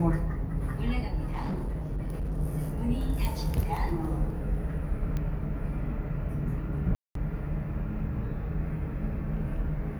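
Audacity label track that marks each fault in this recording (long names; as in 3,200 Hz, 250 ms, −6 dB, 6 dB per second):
1.260000	2.370000	clipping −28 dBFS
3.250000	3.250000	click
5.170000	5.170000	click −21 dBFS
6.950000	7.150000	drop-out 203 ms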